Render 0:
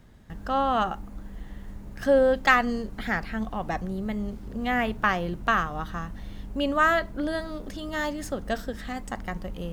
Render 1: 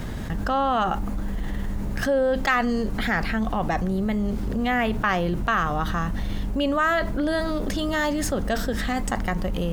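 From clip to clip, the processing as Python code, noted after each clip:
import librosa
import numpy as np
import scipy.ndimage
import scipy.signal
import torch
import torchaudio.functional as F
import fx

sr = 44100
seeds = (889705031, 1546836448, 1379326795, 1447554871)

y = fx.env_flatten(x, sr, amount_pct=70)
y = y * librosa.db_to_amplitude(-3.5)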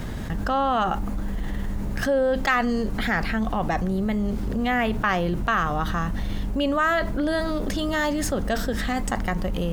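y = x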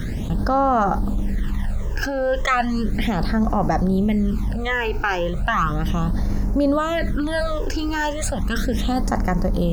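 y = fx.phaser_stages(x, sr, stages=12, low_hz=190.0, high_hz=3300.0, hz=0.35, feedback_pct=20)
y = y * librosa.db_to_amplitude(5.0)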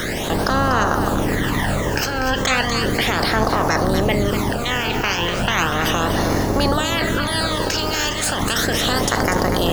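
y = fx.spec_clip(x, sr, under_db=25)
y = fx.echo_multitap(y, sr, ms=(243, 546), db=(-8.5, -19.0))
y = y * librosa.db_to_amplitude(1.0)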